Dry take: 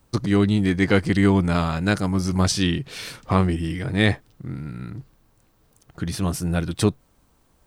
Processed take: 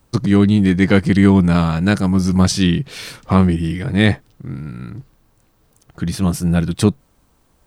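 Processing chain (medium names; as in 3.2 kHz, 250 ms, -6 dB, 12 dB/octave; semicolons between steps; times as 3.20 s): dynamic bell 170 Hz, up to +6 dB, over -31 dBFS, Q 1.4; trim +3 dB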